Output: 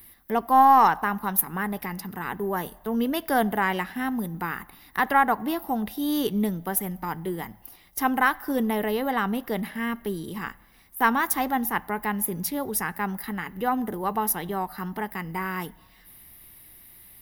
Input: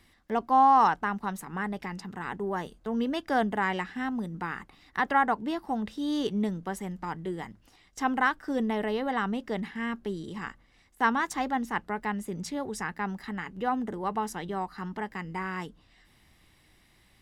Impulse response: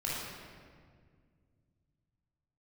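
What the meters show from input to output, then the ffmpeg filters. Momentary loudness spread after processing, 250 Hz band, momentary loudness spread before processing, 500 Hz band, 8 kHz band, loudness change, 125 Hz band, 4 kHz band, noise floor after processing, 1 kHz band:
12 LU, +3.5 dB, 11 LU, +3.5 dB, +13.0 dB, +4.0 dB, +3.5 dB, +3.5 dB, −55 dBFS, +4.0 dB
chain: -filter_complex "[0:a]asplit=2[link_01][link_02];[link_02]lowshelf=frequency=510:width_type=q:width=3:gain=-7.5[link_03];[1:a]atrim=start_sample=2205,asetrate=74970,aresample=44100[link_04];[link_03][link_04]afir=irnorm=-1:irlink=0,volume=-22.5dB[link_05];[link_01][link_05]amix=inputs=2:normalize=0,aexciter=amount=15.8:drive=7.9:freq=11000,aeval=exprs='0.355*(cos(1*acos(clip(val(0)/0.355,-1,1)))-cos(1*PI/2))+0.0251*(cos(2*acos(clip(val(0)/0.355,-1,1)))-cos(2*PI/2))':channel_layout=same,volume=3.5dB"

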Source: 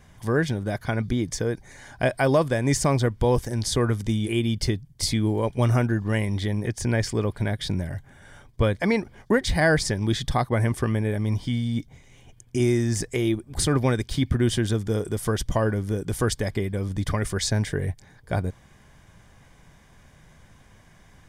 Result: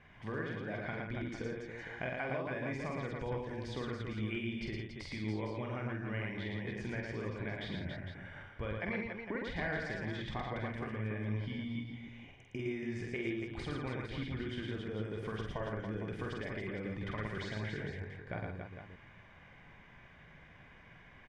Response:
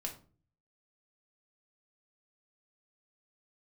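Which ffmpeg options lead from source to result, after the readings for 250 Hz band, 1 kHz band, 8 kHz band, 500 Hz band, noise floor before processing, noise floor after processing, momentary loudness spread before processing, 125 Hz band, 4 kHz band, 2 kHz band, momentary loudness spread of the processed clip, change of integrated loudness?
−14.5 dB, −13.5 dB, below −30 dB, −15.0 dB, −54 dBFS, −58 dBFS, 7 LU, −16.5 dB, −16.0 dB, −10.0 dB, 16 LU, −15.0 dB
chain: -filter_complex "[0:a]lowshelf=frequency=100:gain=-6.5,bandreject=frequency=50:width_type=h:width=6,bandreject=frequency=100:width_type=h:width=6,acompressor=threshold=-34dB:ratio=4,lowpass=frequency=2400:width_type=q:width=2.1,asplit=2[link_01][link_02];[link_02]aecho=0:1:47|112|165|281|457:0.631|0.708|0.316|0.501|0.335[link_03];[link_01][link_03]amix=inputs=2:normalize=0,volume=-7dB"

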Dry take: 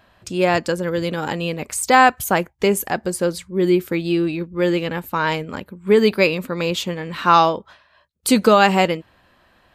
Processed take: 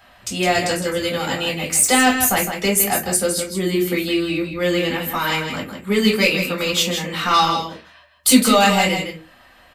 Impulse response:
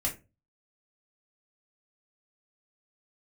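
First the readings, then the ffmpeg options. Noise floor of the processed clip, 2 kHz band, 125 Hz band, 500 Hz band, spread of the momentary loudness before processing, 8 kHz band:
−50 dBFS, +1.5 dB, −1.0 dB, −3.0 dB, 11 LU, +10.0 dB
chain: -filter_complex "[0:a]acrossover=split=300|3000[link_01][link_02][link_03];[link_02]acompressor=threshold=-37dB:ratio=1.5[link_04];[link_01][link_04][link_03]amix=inputs=3:normalize=0,asplit=2[link_05][link_06];[link_06]highpass=frequency=720:poles=1,volume=10dB,asoftclip=type=tanh:threshold=-6dB[link_07];[link_05][link_07]amix=inputs=2:normalize=0,lowpass=frequency=5200:poles=1,volume=-6dB,crystalizer=i=1.5:c=0,aecho=1:1:160:0.422[link_08];[1:a]atrim=start_sample=2205[link_09];[link_08][link_09]afir=irnorm=-1:irlink=0,volume=-3dB"

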